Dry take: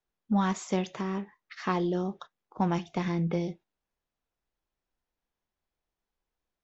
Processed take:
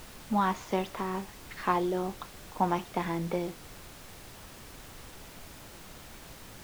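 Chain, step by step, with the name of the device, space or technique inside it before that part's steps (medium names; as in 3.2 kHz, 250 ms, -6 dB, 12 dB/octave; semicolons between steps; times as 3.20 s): horn gramophone (band-pass 230–4100 Hz; peaking EQ 940 Hz +5 dB; wow and flutter; pink noise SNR 13 dB)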